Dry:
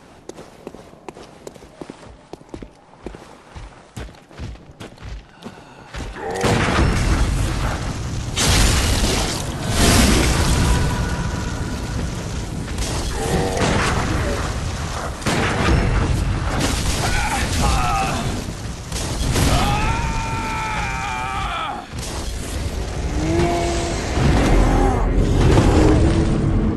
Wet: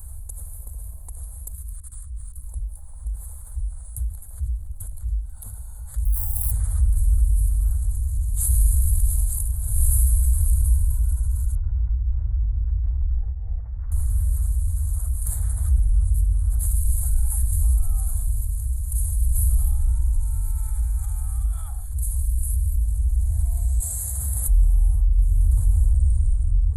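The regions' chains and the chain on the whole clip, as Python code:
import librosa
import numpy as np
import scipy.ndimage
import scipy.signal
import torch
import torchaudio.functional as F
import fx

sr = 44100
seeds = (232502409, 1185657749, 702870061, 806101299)

y = fx.chain(x, sr, fx.band_shelf(hz=640.0, db=-15.0, octaves=1.1),
    fx.over_compress(threshold_db=-46.0, ratio=-1.0), at=(1.53, 2.48))
y = fx.chain(y, sr, fx.fixed_phaser(hz=2000.0, stages=6),
    fx.sample_hold(seeds[0], rate_hz=7100.0, jitter_pct=0),
    fx.env_flatten(amount_pct=70), at=(6.05, 6.51))
y = fx.chain(y, sr, fx.lowpass(hz=1500.0, slope=6),
    fx.over_compress(threshold_db=-25.0, ratio=-0.5),
    fx.resample_bad(factor=8, down='none', up='filtered'), at=(11.55, 13.92))
y = fx.chain(y, sr, fx.highpass(hz=140.0, slope=12),
    fx.high_shelf(hz=6100.0, db=11.0), at=(23.8, 24.48))
y = scipy.signal.sosfilt(scipy.signal.cheby2(4, 40, [140.0, 5900.0], 'bandstop', fs=sr, output='sos'), y)
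y = fx.env_flatten(y, sr, amount_pct=50)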